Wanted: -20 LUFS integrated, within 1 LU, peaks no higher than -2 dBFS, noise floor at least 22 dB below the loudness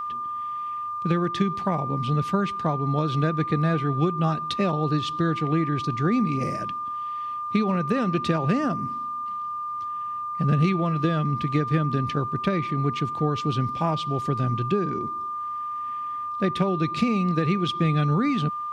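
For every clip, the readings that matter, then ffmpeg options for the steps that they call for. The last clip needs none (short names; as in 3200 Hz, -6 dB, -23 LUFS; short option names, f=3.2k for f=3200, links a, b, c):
steady tone 1200 Hz; tone level -28 dBFS; loudness -25.0 LUFS; peak -10.0 dBFS; loudness target -20.0 LUFS
-> -af "bandreject=f=1.2k:w=30"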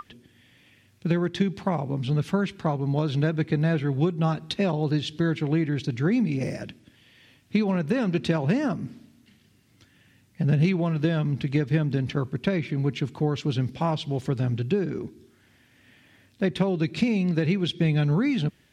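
steady tone none; loudness -25.5 LUFS; peak -10.5 dBFS; loudness target -20.0 LUFS
-> -af "volume=5.5dB"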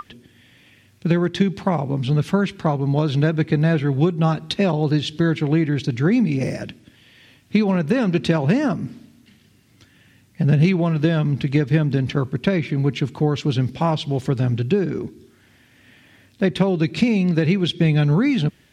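loudness -20.0 LUFS; peak -5.0 dBFS; noise floor -55 dBFS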